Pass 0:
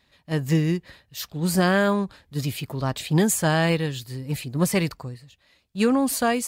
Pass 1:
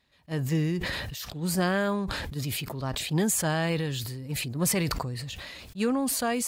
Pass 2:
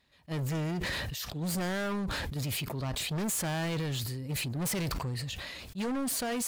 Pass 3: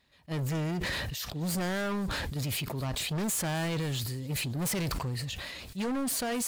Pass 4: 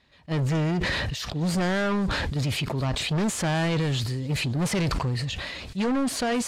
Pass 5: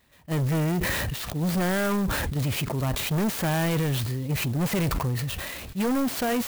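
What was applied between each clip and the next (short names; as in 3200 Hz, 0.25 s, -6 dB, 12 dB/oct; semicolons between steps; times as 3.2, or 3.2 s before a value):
sustainer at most 24 dB/s; gain -6.5 dB
overloaded stage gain 30 dB
thin delay 0.261 s, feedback 69%, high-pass 3400 Hz, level -21 dB; gain +1 dB
air absorption 68 m; gain +7 dB
clock jitter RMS 0.044 ms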